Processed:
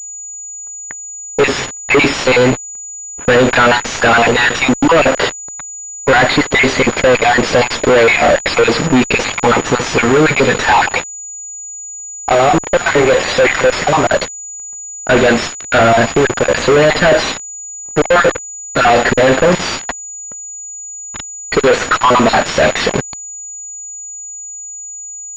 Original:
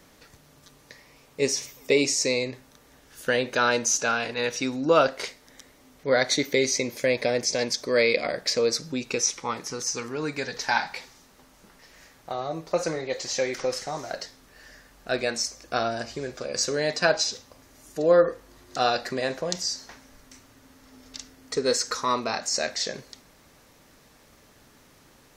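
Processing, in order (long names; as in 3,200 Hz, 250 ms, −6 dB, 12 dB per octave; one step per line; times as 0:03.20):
time-frequency cells dropped at random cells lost 35%
fuzz pedal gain 45 dB, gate −41 dBFS
low-pass that shuts in the quiet parts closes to 1,000 Hz, open at −18.5 dBFS
switching amplifier with a slow clock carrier 6,900 Hz
level +6.5 dB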